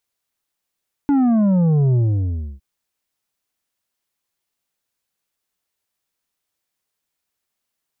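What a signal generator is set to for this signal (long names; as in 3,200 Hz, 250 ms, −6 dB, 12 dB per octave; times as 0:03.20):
bass drop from 290 Hz, over 1.51 s, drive 7 dB, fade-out 0.65 s, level −13.5 dB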